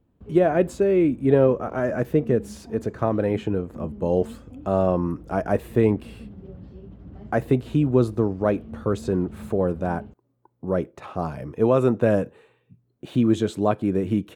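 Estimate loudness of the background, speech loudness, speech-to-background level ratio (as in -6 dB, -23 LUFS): -42.5 LUFS, -23.5 LUFS, 19.0 dB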